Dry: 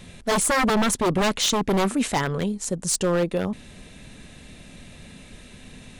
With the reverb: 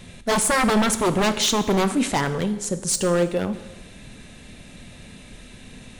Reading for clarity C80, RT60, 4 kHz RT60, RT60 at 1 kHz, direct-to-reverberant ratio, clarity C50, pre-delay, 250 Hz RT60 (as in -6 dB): 14.5 dB, 1.1 s, 1.0 s, 1.1 s, 10.0 dB, 12.5 dB, 4 ms, 1.1 s